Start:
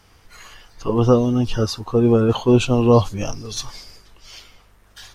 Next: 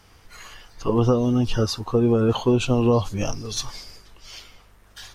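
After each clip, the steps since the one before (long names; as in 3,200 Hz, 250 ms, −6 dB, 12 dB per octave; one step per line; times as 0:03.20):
downward compressor, threshold −15 dBFS, peak gain reduction 7 dB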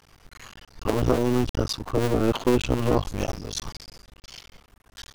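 sub-harmonics by changed cycles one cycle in 2, muted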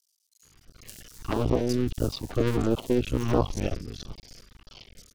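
rotating-speaker cabinet horn 0.9 Hz
multiband delay without the direct sound highs, lows 430 ms, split 5,100 Hz
auto-filter notch saw down 1.5 Hz 460–2,300 Hz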